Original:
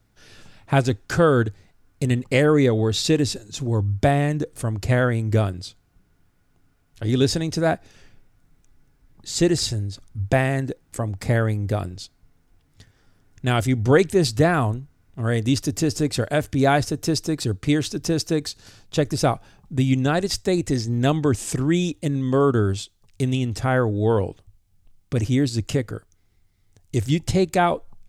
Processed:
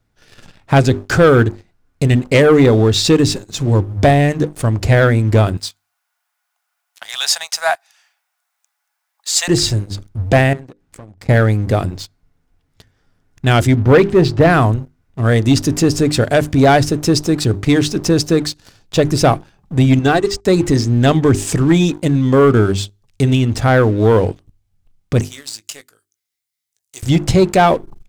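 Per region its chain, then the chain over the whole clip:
5.57–9.48 s: steep high-pass 710 Hz 48 dB/octave + treble shelf 7.2 kHz +11.5 dB
10.53–11.29 s: treble shelf 8 kHz -5 dB + compression 4:1, threshold -42 dBFS
13.76–14.50 s: low-pass 3.4 kHz + tape noise reduction on one side only decoder only
19.99–20.45 s: brick-wall FIR low-pass 9.3 kHz + comb 2.6 ms, depth 56% + upward expansion 2.5:1, over -30 dBFS
25.21–27.03 s: differentiator + doubling 19 ms -9 dB
whole clip: treble shelf 5.9 kHz -5 dB; hum notches 50/100/150/200/250/300/350/400 Hz; waveshaping leveller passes 2; trim +2.5 dB

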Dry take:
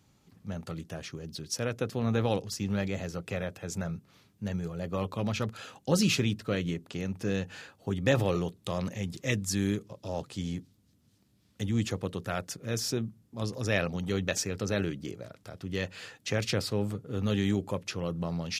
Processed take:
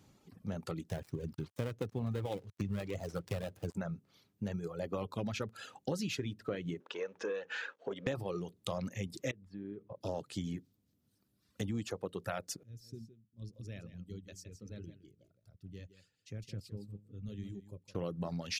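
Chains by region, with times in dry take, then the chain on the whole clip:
0.89–3.75 s: dead-time distortion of 0.21 ms + peaking EQ 97 Hz +8.5 dB 1.3 oct
6.80–8.07 s: compression 1.5:1, threshold -45 dBFS + waveshaping leveller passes 2 + cabinet simulation 440–5700 Hz, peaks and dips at 480 Hz +7 dB, 750 Hz -8 dB, 1.6 kHz +5 dB, 4.7 kHz -9 dB
9.31–10.01 s: compression 4:1, threshold -39 dBFS + distance through air 440 m
12.63–17.95 s: amplifier tone stack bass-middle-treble 10-0-1 + delay 164 ms -6.5 dB
whole clip: reverb removal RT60 1.8 s; peaking EQ 410 Hz +4.5 dB 2.2 oct; compression 6:1, threshold -34 dBFS

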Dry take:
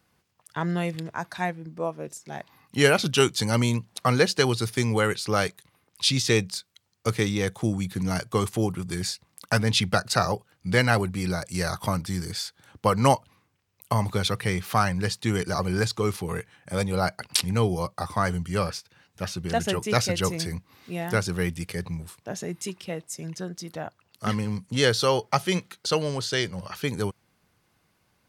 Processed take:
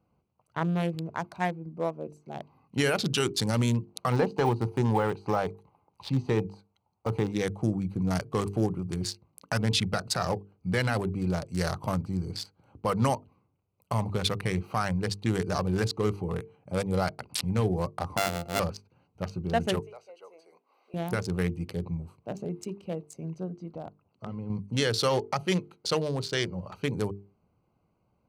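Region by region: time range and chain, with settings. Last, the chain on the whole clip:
4.12–7.32 s: de-esser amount 95% + peaking EQ 870 Hz +13.5 dB 0.57 oct
18.17–18.60 s: sorted samples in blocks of 64 samples + bass shelf 230 Hz -8.5 dB
19.80–20.94 s: block-companded coder 7-bit + high-pass 490 Hz 24 dB/octave + compression 2:1, threshold -53 dBFS
23.51–24.50 s: compression 5:1, threshold -31 dBFS + distance through air 100 m
whole clip: local Wiener filter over 25 samples; peak limiter -14.5 dBFS; hum notches 50/100/150/200/250/300/350/400/450 Hz

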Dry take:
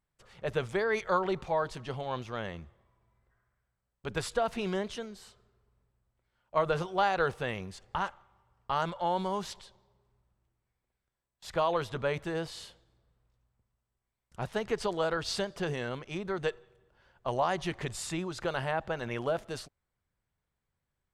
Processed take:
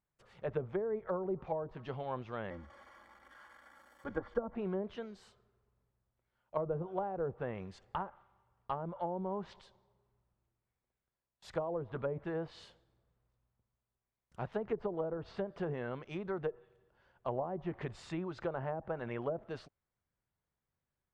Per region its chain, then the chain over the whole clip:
2.50–4.55 s: zero-crossing glitches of -28.5 dBFS + Savitzky-Golay filter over 41 samples + comb 3.6 ms, depth 82%
whole clip: bass shelf 66 Hz -7.5 dB; low-pass that closes with the level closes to 520 Hz, closed at -26.5 dBFS; treble shelf 2.9 kHz -8.5 dB; trim -3 dB

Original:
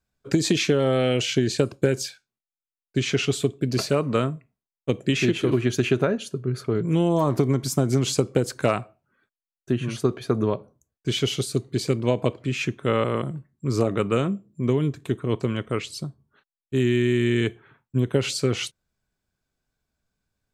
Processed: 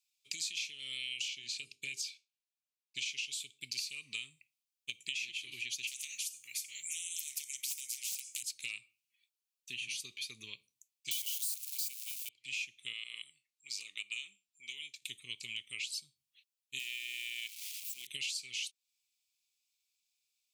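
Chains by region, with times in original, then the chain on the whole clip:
1.28–2.99 s: low-pass 3.6 kHz 6 dB/octave + hum notches 50/100/150/200/250/300/350/400/450 Hz
5.87–8.43 s: resonant high shelf 5.4 kHz +9.5 dB, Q 3 + hard clipper -10 dBFS + spectrum-flattening compressor 4:1
11.11–12.29 s: zero-crossing glitches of -20.5 dBFS + high-pass 410 Hz + treble shelf 6.1 kHz +9.5 dB
12.93–15.02 s: high-pass 1.4 kHz 6 dB/octave + treble shelf 9.3 kHz -10 dB
16.79–18.07 s: zero-crossing glitches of -28 dBFS + high-pass 590 Hz + treble shelf 3.2 kHz -7 dB
whole clip: elliptic high-pass 2.4 kHz, stop band 40 dB; compression 6:1, threshold -42 dBFS; trim +5 dB

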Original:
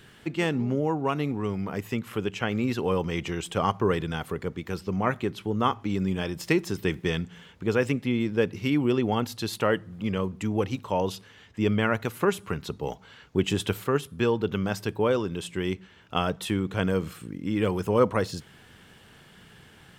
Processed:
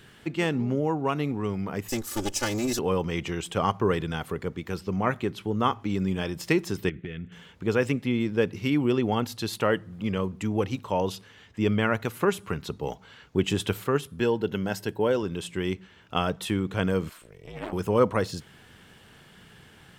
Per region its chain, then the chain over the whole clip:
1.88–2.79 s: comb filter that takes the minimum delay 3.4 ms + resonant high shelf 4.2 kHz +13.5 dB, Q 1.5 + comb 2.4 ms, depth 34%
6.89–7.32 s: static phaser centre 2.2 kHz, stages 4 + compression 10:1, threshold -30 dBFS + distance through air 170 m
14.20–15.23 s: treble shelf 8.7 kHz +5.5 dB + comb of notches 1.2 kHz + tape noise reduction on one side only decoder only
17.09–17.73 s: high-pass 390 Hz + ring modulator 160 Hz + transformer saturation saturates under 1.1 kHz
whole clip: none

